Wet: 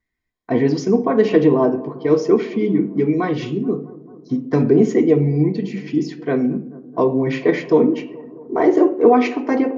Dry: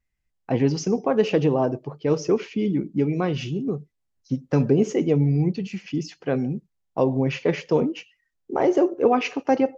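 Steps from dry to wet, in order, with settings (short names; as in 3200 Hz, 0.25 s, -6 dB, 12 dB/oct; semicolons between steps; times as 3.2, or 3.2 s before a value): analogue delay 0.218 s, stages 2048, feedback 72%, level -20.5 dB; reverb RT60 0.45 s, pre-delay 3 ms, DRR 1 dB; gain -4 dB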